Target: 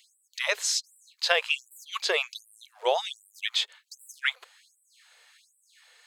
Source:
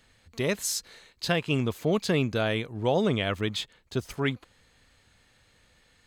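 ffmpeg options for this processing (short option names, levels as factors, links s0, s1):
-filter_complex "[0:a]acrossover=split=7300[s0][s1];[s1]acompressor=threshold=0.00126:ratio=4:attack=1:release=60[s2];[s0][s2]amix=inputs=2:normalize=0,tiltshelf=f=700:g=-4.5,afftfilt=real='re*gte(b*sr/1024,380*pow(7600/380,0.5+0.5*sin(2*PI*1.3*pts/sr)))':imag='im*gte(b*sr/1024,380*pow(7600/380,0.5+0.5*sin(2*PI*1.3*pts/sr)))':win_size=1024:overlap=0.75,volume=1.33"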